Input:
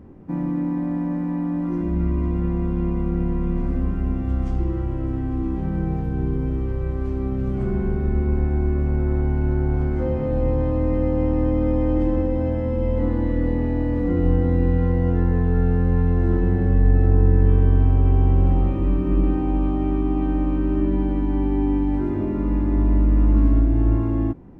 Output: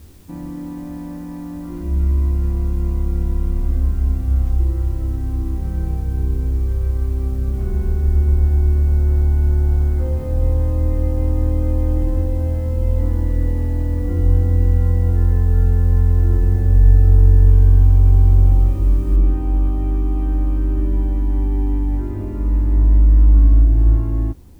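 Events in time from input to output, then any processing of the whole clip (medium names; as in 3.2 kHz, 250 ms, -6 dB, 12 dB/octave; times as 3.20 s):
19.16 s: noise floor step -50 dB -57 dB
whole clip: resonant low shelf 110 Hz +9.5 dB, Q 1.5; trim -4.5 dB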